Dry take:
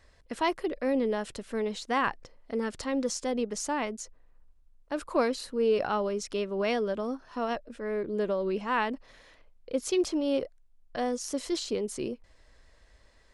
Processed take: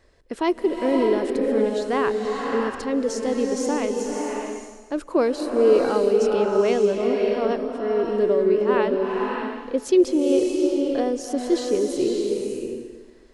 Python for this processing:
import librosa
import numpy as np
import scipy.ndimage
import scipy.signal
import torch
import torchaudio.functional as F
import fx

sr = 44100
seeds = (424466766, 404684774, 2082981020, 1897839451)

y = fx.peak_eq(x, sr, hz=370.0, db=10.5, octaves=1.1)
y = fx.rev_bloom(y, sr, seeds[0], attack_ms=610, drr_db=0.5)